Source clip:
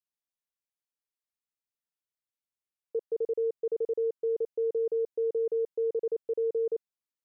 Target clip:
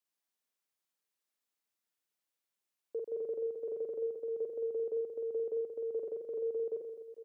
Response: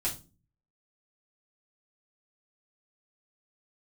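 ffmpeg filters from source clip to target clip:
-filter_complex "[0:a]highpass=180,alimiter=level_in=10.5dB:limit=-24dB:level=0:latency=1:release=18,volume=-10.5dB,asplit=2[a][b];[b]aecho=0:1:50|130|258|462.8|790.5:0.631|0.398|0.251|0.158|0.1[c];[a][c]amix=inputs=2:normalize=0,volume=3dB"

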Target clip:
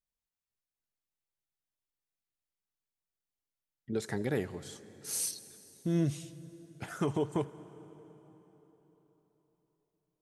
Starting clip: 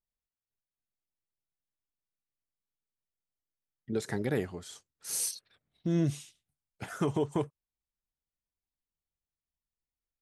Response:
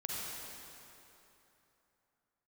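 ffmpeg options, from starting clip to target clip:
-filter_complex "[0:a]asplit=2[a][b];[1:a]atrim=start_sample=2205,asetrate=32634,aresample=44100,adelay=83[c];[b][c]afir=irnorm=-1:irlink=0,volume=-20.5dB[d];[a][d]amix=inputs=2:normalize=0,volume=-1.5dB"

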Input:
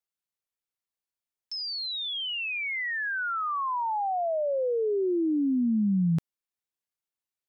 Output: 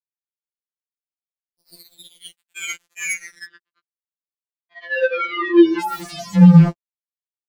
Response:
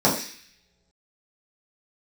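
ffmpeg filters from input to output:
-filter_complex "[0:a]aeval=exprs='val(0)+0.5*0.01*sgn(val(0))':c=same,asplit=3[a][b][c];[a]bandpass=f=270:t=q:w=8,volume=0dB[d];[b]bandpass=f=2.29k:t=q:w=8,volume=-6dB[e];[c]bandpass=f=3.01k:t=q:w=8,volume=-9dB[f];[d][e][f]amix=inputs=3:normalize=0,highshelf=f=3.2k:g=3.5,acrossover=split=2400[g][h];[g]adelay=410[i];[i][h]amix=inputs=2:normalize=0[j];[1:a]atrim=start_sample=2205,atrim=end_sample=6174[k];[j][k]afir=irnorm=-1:irlink=0,acrusher=bits=3:mix=0:aa=0.5,acontrast=35,asplit=3[l][m][n];[l]afade=t=out:st=3.45:d=0.02[o];[m]highpass=f=180:w=0.5412,highpass=f=180:w=1.3066,equalizer=f=360:t=q:w=4:g=5,equalizer=f=540:t=q:w=4:g=-5,equalizer=f=780:t=q:w=4:g=-4,equalizer=f=1.1k:t=q:w=4:g=9,equalizer=f=1.8k:t=q:w=4:g=8,equalizer=f=2.8k:t=q:w=4:g=4,lowpass=f=4.1k:w=0.5412,lowpass=f=4.1k:w=1.3066,afade=t=in:st=3.45:d=0.02,afade=t=out:st=5.78:d=0.02[p];[n]afade=t=in:st=5.78:d=0.02[q];[o][p][q]amix=inputs=3:normalize=0,alimiter=level_in=11dB:limit=-1dB:release=50:level=0:latency=1,afftfilt=real='re*2.83*eq(mod(b,8),0)':imag='im*2.83*eq(mod(b,8),0)':win_size=2048:overlap=0.75,volume=-6.5dB"

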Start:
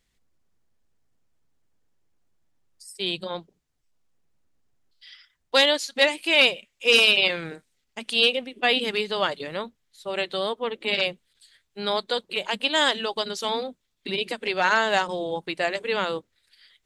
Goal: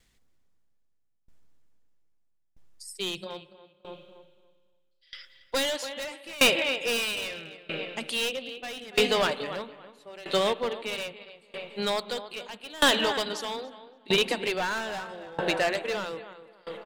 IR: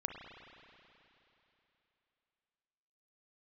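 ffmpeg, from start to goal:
-filter_complex "[0:a]asplit=2[a][b];[b]adelay=285,lowpass=f=2.4k:p=1,volume=-10dB,asplit=2[c][d];[d]adelay=285,lowpass=f=2.4k:p=1,volume=0.43,asplit=2[e][f];[f]adelay=285,lowpass=f=2.4k:p=1,volume=0.43,asplit=2[g][h];[h]adelay=285,lowpass=f=2.4k:p=1,volume=0.43,asplit=2[i][j];[j]adelay=285,lowpass=f=2.4k:p=1,volume=0.43[k];[a][c][e][g][i][k]amix=inputs=6:normalize=0,asplit=2[l][m];[1:a]atrim=start_sample=2205[n];[m][n]afir=irnorm=-1:irlink=0,volume=-10dB[o];[l][o]amix=inputs=2:normalize=0,volume=20.5dB,asoftclip=hard,volume=-20.5dB,aeval=exprs='val(0)*pow(10,-24*if(lt(mod(0.78*n/s,1),2*abs(0.78)/1000),1-mod(0.78*n/s,1)/(2*abs(0.78)/1000),(mod(0.78*n/s,1)-2*abs(0.78)/1000)/(1-2*abs(0.78)/1000))/20)':c=same,volume=5dB"

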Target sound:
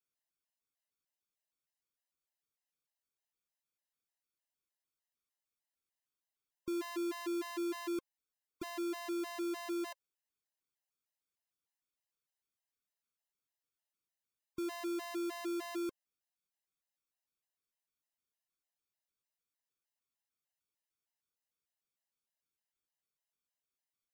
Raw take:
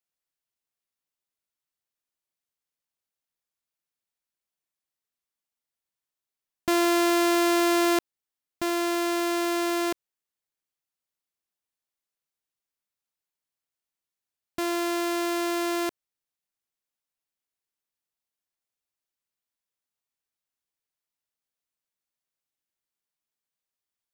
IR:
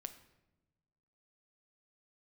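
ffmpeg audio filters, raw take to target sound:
-af "asoftclip=type=tanh:threshold=-32dB,afftfilt=real='re*gt(sin(2*PI*3.3*pts/sr)*(1-2*mod(floor(b*sr/1024/530),2)),0)':imag='im*gt(sin(2*PI*3.3*pts/sr)*(1-2*mod(floor(b*sr/1024/530),2)),0)':win_size=1024:overlap=0.75,volume=-2dB"

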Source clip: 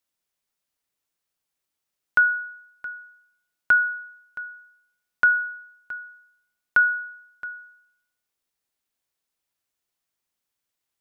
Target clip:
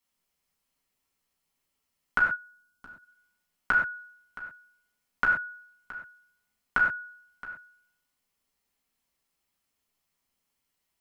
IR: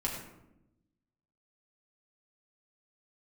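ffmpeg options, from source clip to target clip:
-filter_complex "[0:a]asplit=3[a][b][c];[a]afade=t=out:st=2.21:d=0.02[d];[b]equalizer=f=125:t=o:w=1:g=-3,equalizer=f=250:t=o:w=1:g=5,equalizer=f=500:t=o:w=1:g=-5,equalizer=f=1k:t=o:w=1:g=-3,equalizer=f=2k:t=o:w=1:g=-12,afade=t=in:st=2.21:d=0.02,afade=t=out:st=3.02:d=0.02[e];[c]afade=t=in:st=3.02:d=0.02[f];[d][e][f]amix=inputs=3:normalize=0[g];[1:a]atrim=start_sample=2205,atrim=end_sample=6174[h];[g][h]afir=irnorm=-1:irlink=0"

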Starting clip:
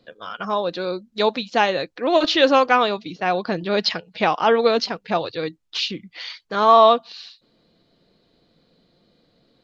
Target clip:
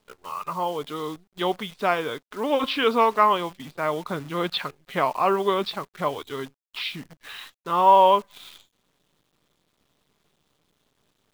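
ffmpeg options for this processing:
-af "equalizer=f=1.3k:t=o:w=0.59:g=9.5,asetrate=37485,aresample=44100,acrusher=bits=7:dc=4:mix=0:aa=0.000001,volume=-7dB"

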